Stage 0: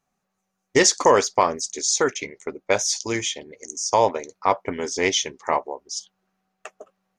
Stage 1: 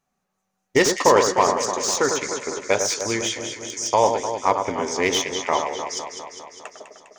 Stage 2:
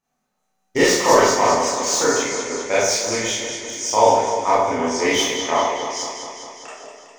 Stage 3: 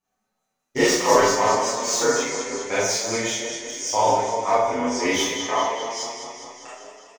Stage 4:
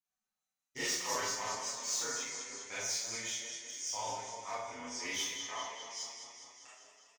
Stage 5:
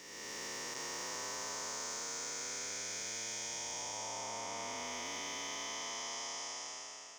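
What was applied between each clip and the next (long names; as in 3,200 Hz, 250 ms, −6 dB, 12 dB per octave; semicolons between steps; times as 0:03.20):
delay that swaps between a low-pass and a high-pass 101 ms, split 1,700 Hz, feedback 81%, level −6 dB; slew-rate limiting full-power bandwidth 560 Hz
four-comb reverb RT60 0.54 s, combs from 25 ms, DRR −8 dB; level −5.5 dB
barber-pole flanger 7.5 ms +0.73 Hz
guitar amp tone stack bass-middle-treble 5-5-5; level −4.5 dB
spectrum smeared in time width 1,060 ms; reversed playback; downward compressor 10 to 1, threshold −50 dBFS, peak gain reduction 13 dB; reversed playback; level +11.5 dB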